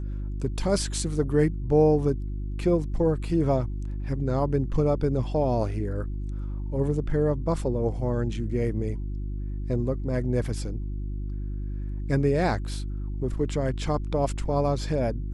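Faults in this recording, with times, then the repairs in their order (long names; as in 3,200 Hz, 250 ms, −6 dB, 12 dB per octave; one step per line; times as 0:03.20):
mains hum 50 Hz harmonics 7 −31 dBFS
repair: hum removal 50 Hz, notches 7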